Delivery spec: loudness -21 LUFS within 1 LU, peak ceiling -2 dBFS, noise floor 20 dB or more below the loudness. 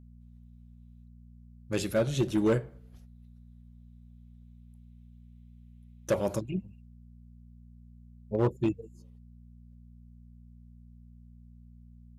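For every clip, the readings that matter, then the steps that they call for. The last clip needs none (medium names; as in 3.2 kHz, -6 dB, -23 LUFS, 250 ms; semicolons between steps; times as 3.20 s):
clipped samples 0.5%; clipping level -19.5 dBFS; hum 60 Hz; highest harmonic 240 Hz; hum level -50 dBFS; loudness -30.5 LUFS; peak level -19.5 dBFS; loudness target -21.0 LUFS
-> clip repair -19.5 dBFS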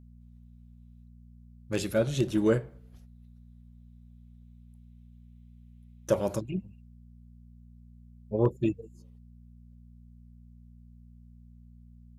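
clipped samples 0.0%; hum 60 Hz; highest harmonic 180 Hz; hum level -51 dBFS
-> de-hum 60 Hz, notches 3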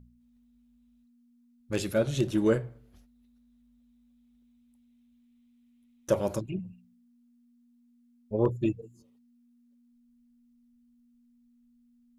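hum not found; loudness -30.0 LUFS; peak level -12.0 dBFS; loudness target -21.0 LUFS
-> trim +9 dB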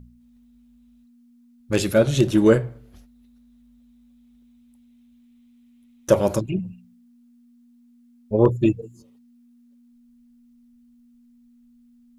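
loudness -21.0 LUFS; peak level -3.0 dBFS; noise floor -55 dBFS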